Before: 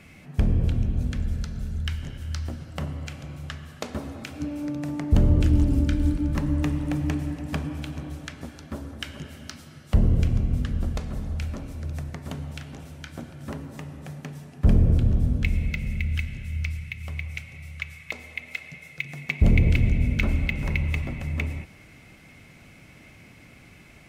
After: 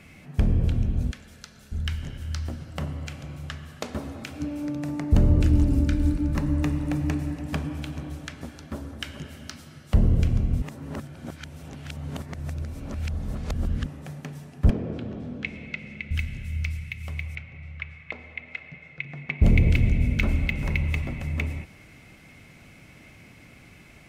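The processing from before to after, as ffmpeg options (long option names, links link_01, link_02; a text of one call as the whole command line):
ffmpeg -i in.wav -filter_complex "[0:a]asettb=1/sr,asplit=3[link_01][link_02][link_03];[link_01]atrim=end=1.114[link_04];[link_02]atrim=start=1.11:end=1.72,asetpts=PTS-STARTPTS,afade=type=in:duration=0.004:curve=qsin,afade=type=out:start_time=0.606:duration=0.004:curve=qsin,highpass=frequency=1200:poles=1[link_05];[link_03]atrim=start=1.716[link_06];[link_04][link_05]acrossfade=duration=0.004:curve1=hsin:curve2=qsin[link_07];[link_07][link_06]acrossfade=duration=0.004:curve1=qsin:curve2=hsin,asettb=1/sr,asplit=3[link_08][link_09][link_10];[link_08]atrim=end=4.864[link_11];[link_09]atrim=start=4.86:end=7.4,asetpts=PTS-STARTPTS,afade=type=in:duration=0.004:curve=qsin,afade=type=out:start_time=2.536:duration=0.004:curve=qsin,bandreject=frequency=3200:width=12[link_12];[link_10]atrim=start=7.396[link_13];[link_11][link_12]acrossfade=duration=0.004:curve1=hsin:curve2=qsin[link_14];[link_14][link_13]acrossfade=duration=0.004:curve1=qsin:curve2=hsin,asettb=1/sr,asplit=3[link_15][link_16][link_17];[link_15]atrim=end=14.704[link_18];[link_16]atrim=start=14.7:end=16.11,asetpts=PTS-STARTPTS,afade=type=in:duration=0.004:curve=qsin,afade=type=out:start_time=1.406:duration=0.004:curve=qsin,highpass=260,lowpass=3800[link_19];[link_17]atrim=start=16.106[link_20];[link_18][link_19]acrossfade=duration=0.004:curve1=hsin:curve2=qsin[link_21];[link_21][link_20]acrossfade=duration=0.004:curve1=qsin:curve2=hsin,asettb=1/sr,asplit=3[link_22][link_23][link_24];[link_22]atrim=end=17.354[link_25];[link_23]atrim=start=17.35:end=19.42,asetpts=PTS-STARTPTS,afade=type=in:duration=0.004:curve=qsin,afade=type=out:start_time=2.066:duration=0.004:curve=qsin,lowpass=2400[link_26];[link_24]atrim=start=19.416[link_27];[link_25][link_26]acrossfade=duration=0.004:curve1=hsin:curve2=qsin[link_28];[link_28][link_27]acrossfade=duration=0.004:curve1=qsin:curve2=hsin,asplit=3[link_29][link_30][link_31];[link_29]atrim=end=10.622[link_32];[link_30]atrim=start=10.618:end=13.862,asetpts=PTS-STARTPTS,areverse[link_33];[link_31]atrim=start=13.858[link_34];[link_32][link_33]acrossfade=duration=0.004:curve1=hsin:curve2=hsin[link_35];[link_35][link_34]acrossfade=duration=0.004:curve1=hsin:curve2=hsin" out.wav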